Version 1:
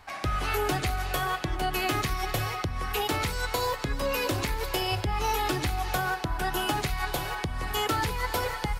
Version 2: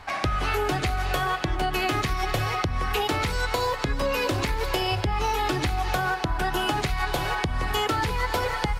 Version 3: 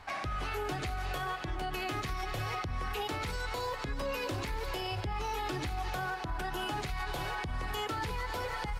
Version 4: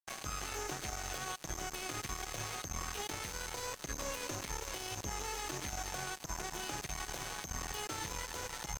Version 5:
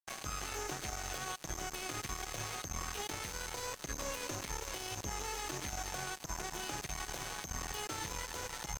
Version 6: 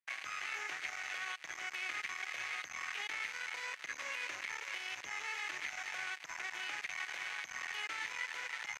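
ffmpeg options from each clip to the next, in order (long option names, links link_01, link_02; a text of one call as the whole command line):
ffmpeg -i in.wav -af "highshelf=frequency=8900:gain=-11.5,acompressor=threshold=-31dB:ratio=4,volume=8.5dB" out.wav
ffmpeg -i in.wav -af "alimiter=limit=-20dB:level=0:latency=1:release=54,volume=-7dB" out.wav
ffmpeg -i in.wav -af "aeval=exprs='val(0)+0.00891*sin(2*PI*6300*n/s)':channel_layout=same,acrusher=bits=4:mix=0:aa=0.5,volume=-4.5dB" out.wav
ffmpeg -i in.wav -af anull out.wav
ffmpeg -i in.wav -af "bandpass=frequency=2100:width_type=q:width=3.2:csg=0,volume=10dB" out.wav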